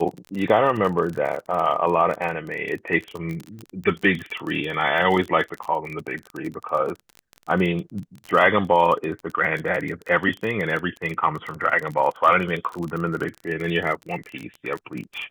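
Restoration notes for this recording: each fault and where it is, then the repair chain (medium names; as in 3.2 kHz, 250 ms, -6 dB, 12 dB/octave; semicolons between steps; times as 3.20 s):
crackle 29 per s -27 dBFS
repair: de-click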